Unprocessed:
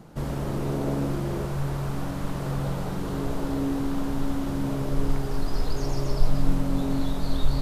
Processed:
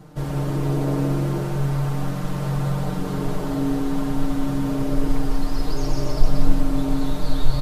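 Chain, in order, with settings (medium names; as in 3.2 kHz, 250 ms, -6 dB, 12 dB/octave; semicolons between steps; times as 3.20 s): comb 6.6 ms, depth 84%; on a send: delay 179 ms -6 dB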